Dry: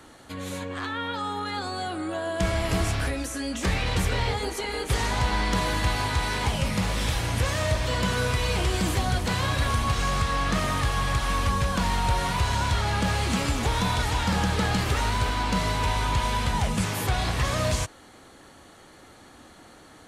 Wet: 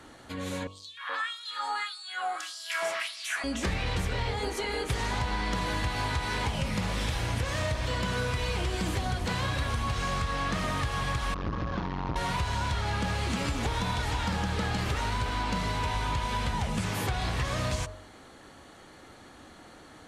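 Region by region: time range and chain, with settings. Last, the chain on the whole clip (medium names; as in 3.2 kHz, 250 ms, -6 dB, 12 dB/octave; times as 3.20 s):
0.67–3.44 s: three bands offset in time highs, mids, lows 300/420 ms, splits 1/4 kHz + LFO high-pass sine 1.7 Hz 810–4900 Hz
11.34–12.16 s: CVSD coder 32 kbps + treble shelf 2.8 kHz -11.5 dB + transformer saturation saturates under 350 Hz
whole clip: treble shelf 8.5 kHz -8 dB; de-hum 48.05 Hz, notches 28; compression, threshold -26 dBFS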